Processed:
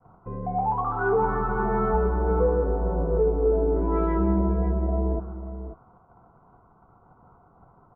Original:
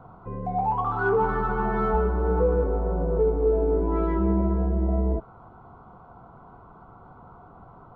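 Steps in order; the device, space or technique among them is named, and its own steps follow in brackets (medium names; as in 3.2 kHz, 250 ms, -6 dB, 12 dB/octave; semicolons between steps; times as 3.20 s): hearing-loss simulation (low-pass 1.7 kHz 12 dB/octave; expander -41 dBFS); 3.76–4.39 s: treble shelf 2 kHz +11 dB; delay 541 ms -12 dB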